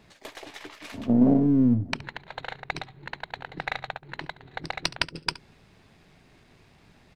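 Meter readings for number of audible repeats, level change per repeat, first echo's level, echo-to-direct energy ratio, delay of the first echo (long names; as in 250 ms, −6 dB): 1, repeats not evenly spaced, −18.5 dB, −18.5 dB, 70 ms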